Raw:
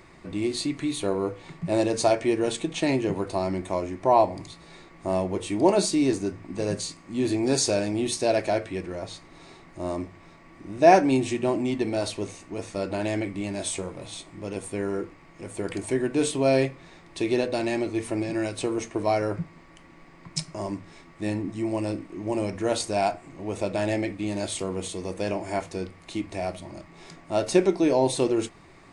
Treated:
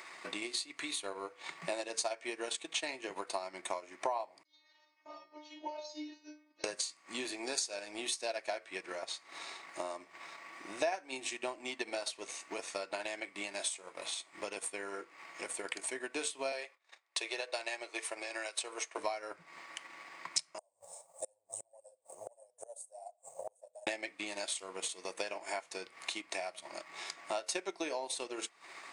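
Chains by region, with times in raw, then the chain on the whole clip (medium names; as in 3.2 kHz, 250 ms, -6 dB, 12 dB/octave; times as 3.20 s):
4.43–6.64 s: steep low-pass 6.1 kHz 72 dB/octave + chorus 2.5 Hz, delay 16 ms, depth 5.2 ms + inharmonic resonator 300 Hz, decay 0.61 s, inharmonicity 0.002
16.52–18.98 s: high-pass 400 Hz 24 dB/octave + gate -50 dBFS, range -23 dB
20.58–23.87 s: FFT filter 110 Hz 0 dB, 150 Hz +1 dB, 230 Hz -29 dB, 350 Hz -21 dB, 530 Hz +10 dB, 810 Hz +2 dB, 1.3 kHz -22 dB, 2 kHz -29 dB, 4.9 kHz -14 dB, 8 kHz +11 dB + flange 1.6 Hz, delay 2.5 ms, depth 9.6 ms, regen +38% + inverted gate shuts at -29 dBFS, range -28 dB
whole clip: Bessel high-pass 1.1 kHz, order 2; compression 3:1, threshold -48 dBFS; transient shaper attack +6 dB, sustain -8 dB; trim +6.5 dB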